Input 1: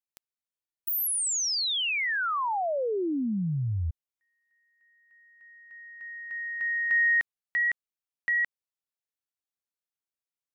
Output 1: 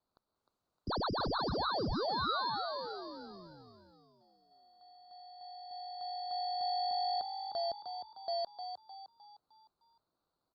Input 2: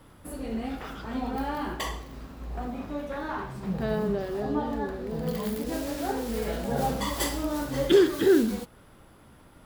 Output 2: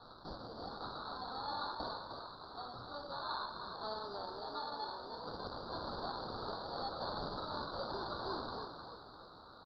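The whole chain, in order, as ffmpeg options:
-filter_complex "[0:a]highpass=1300,acontrast=70,alimiter=limit=0.075:level=0:latency=1:release=126,acompressor=threshold=0.00282:ratio=1.5:attack=0.19:release=22:knee=1:detection=peak,acrusher=samples=17:mix=1:aa=0.000001,asplit=6[s0][s1][s2][s3][s4][s5];[s1]adelay=306,afreqshift=48,volume=0.422[s6];[s2]adelay=612,afreqshift=96,volume=0.182[s7];[s3]adelay=918,afreqshift=144,volume=0.0776[s8];[s4]adelay=1224,afreqshift=192,volume=0.0335[s9];[s5]adelay=1530,afreqshift=240,volume=0.0145[s10];[s0][s6][s7][s8][s9][s10]amix=inputs=6:normalize=0,crystalizer=i=4:c=0,aresample=11025,aresample=44100,asuperstop=centerf=2400:order=8:qfactor=0.92" -ar 48000 -c:a libopus -b:a 48k

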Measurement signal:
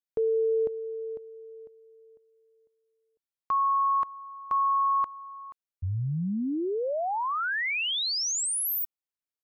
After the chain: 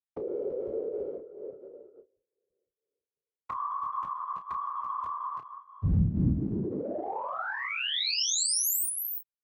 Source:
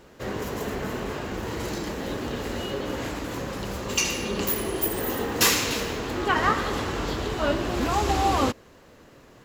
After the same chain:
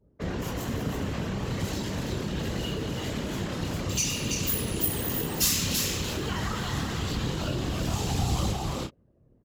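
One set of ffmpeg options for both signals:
-filter_complex "[0:a]adynamicequalizer=threshold=0.00562:dfrequency=3200:dqfactor=1.3:tfrequency=3200:tqfactor=1.3:attack=5:release=100:ratio=0.375:range=3:mode=boostabove:tftype=bell,anlmdn=1,flanger=delay=16:depth=5.5:speed=0.46,equalizer=f=130:w=0.78:g=5.5,asplit=2[s0][s1];[s1]aecho=0:1:333:0.501[s2];[s0][s2]amix=inputs=2:normalize=0,acrossover=split=180|5000[s3][s4][s5];[s4]acompressor=threshold=0.0126:ratio=6:attack=2.5:release=47:knee=2.83:detection=peak[s6];[s3][s6][s5]amix=inputs=3:normalize=0,afftfilt=real='hypot(re,im)*cos(2*PI*random(0))':imag='hypot(re,im)*sin(2*PI*random(1))':win_size=512:overlap=0.75,highpass=40,asplit=2[s7][s8];[s8]adelay=31,volume=0.335[s9];[s7][s9]amix=inputs=2:normalize=0,asplit=2[s10][s11];[s11]acompressor=threshold=0.00708:ratio=6:attack=4.3:release=33,volume=0.75[s12];[s10][s12]amix=inputs=2:normalize=0,volume=2.11"

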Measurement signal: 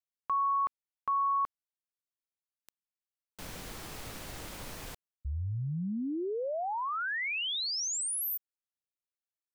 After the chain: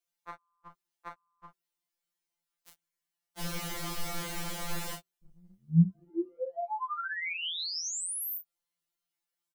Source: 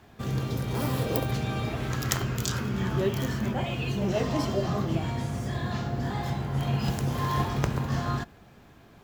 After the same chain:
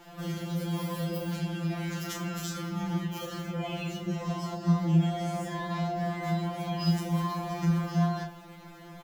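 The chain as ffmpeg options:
-filter_complex "[0:a]bandreject=f=124.4:t=h:w=4,bandreject=f=248.8:t=h:w=4,bandreject=f=373.2:t=h:w=4,acrossover=split=190[s0][s1];[s1]acompressor=threshold=0.00794:ratio=6:attack=5:release=112:knee=1:detection=peak[s2];[s0][s2]amix=inputs=2:normalize=0,aecho=1:1:30|43:0.501|0.299,afftfilt=real='re*2.83*eq(mod(b,8),0)':imag='im*2.83*eq(mod(b,8),0)':win_size=2048:overlap=0.75,volume=2.51"

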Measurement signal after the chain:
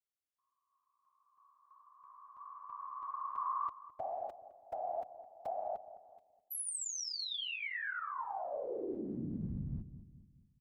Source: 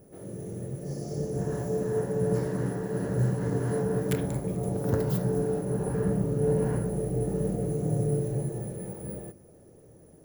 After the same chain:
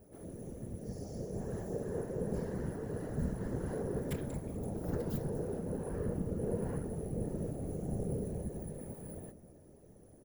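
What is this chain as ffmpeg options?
-filter_complex "[0:a]asplit=2[s0][s1];[s1]acompressor=threshold=0.01:ratio=6,volume=0.944[s2];[s0][s2]amix=inputs=2:normalize=0,equalizer=f=66:w=2.1:g=6,afftfilt=real='hypot(re,im)*cos(2*PI*random(0))':imag='hypot(re,im)*sin(2*PI*random(1))':win_size=512:overlap=0.75,asplit=2[s3][s4];[s4]adelay=211,lowpass=f=810:p=1,volume=0.251,asplit=2[s5][s6];[s6]adelay=211,lowpass=f=810:p=1,volume=0.47,asplit=2[s7][s8];[s8]adelay=211,lowpass=f=810:p=1,volume=0.47,asplit=2[s9][s10];[s10]adelay=211,lowpass=f=810:p=1,volume=0.47,asplit=2[s11][s12];[s12]adelay=211,lowpass=f=810:p=1,volume=0.47[s13];[s3][s5][s7][s9][s11][s13]amix=inputs=6:normalize=0,volume=0.531"

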